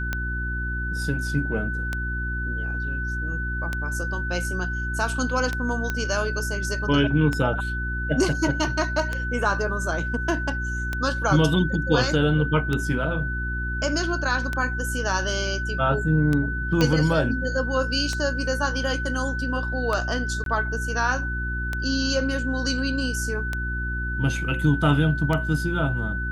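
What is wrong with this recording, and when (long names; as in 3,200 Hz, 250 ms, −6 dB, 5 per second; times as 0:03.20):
mains hum 60 Hz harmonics 6 −29 dBFS
scratch tick 33 1/3 rpm −12 dBFS
whistle 1,500 Hz −29 dBFS
0:05.90: click −12 dBFS
0:16.81: click −8 dBFS
0:20.44–0:20.46: drop-out 22 ms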